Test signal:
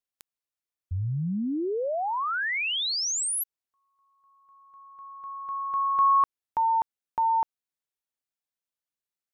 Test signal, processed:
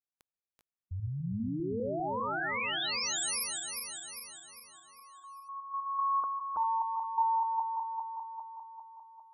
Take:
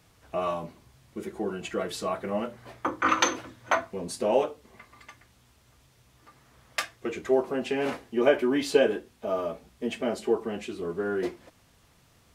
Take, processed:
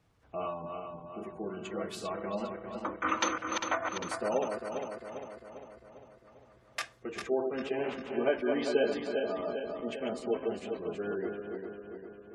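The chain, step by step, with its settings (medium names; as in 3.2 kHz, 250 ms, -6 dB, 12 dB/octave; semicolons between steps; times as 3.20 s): backward echo that repeats 200 ms, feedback 74%, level -4.5 dB; spectral gate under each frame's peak -30 dB strong; tape noise reduction on one side only decoder only; trim -7.5 dB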